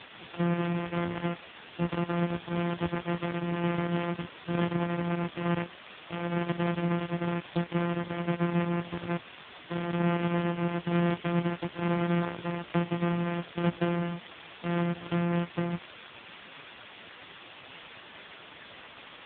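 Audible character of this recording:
a buzz of ramps at a fixed pitch in blocks of 256 samples
tremolo saw down 1.1 Hz, depth 40%
a quantiser's noise floor 6 bits, dither triangular
AMR narrowband

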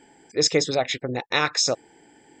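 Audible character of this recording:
background noise floor −57 dBFS
spectral slope −2.5 dB per octave

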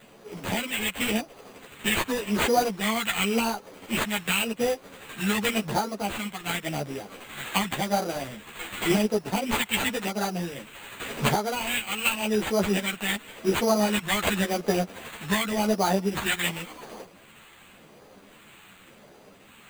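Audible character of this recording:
phaser sweep stages 2, 0.9 Hz, lowest notch 490–2,600 Hz
aliases and images of a low sample rate 5,400 Hz, jitter 0%
a shimmering, thickened sound

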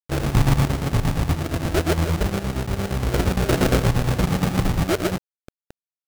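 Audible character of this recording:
aliases and images of a low sample rate 1,000 Hz, jitter 20%
chopped level 8.6 Hz, depth 60%, duty 60%
a quantiser's noise floor 6 bits, dither none

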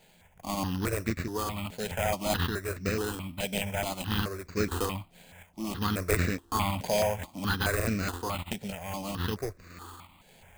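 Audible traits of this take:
a buzz of ramps at a fixed pitch in blocks of 8 samples
sample-and-hold tremolo
aliases and images of a low sample rate 5,600 Hz, jitter 0%
notches that jump at a steady rate 4.7 Hz 310–3,200 Hz

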